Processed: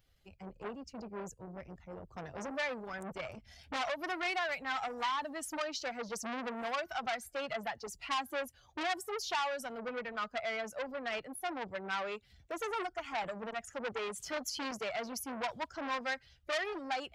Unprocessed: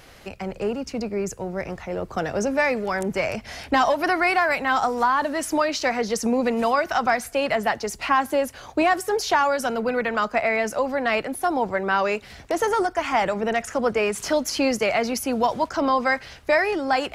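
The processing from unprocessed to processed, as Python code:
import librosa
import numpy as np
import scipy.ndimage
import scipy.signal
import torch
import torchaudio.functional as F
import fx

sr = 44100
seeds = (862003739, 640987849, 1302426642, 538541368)

y = fx.bin_expand(x, sr, power=1.5)
y = fx.transformer_sat(y, sr, knee_hz=2800.0)
y = y * 10.0 ** (-9.0 / 20.0)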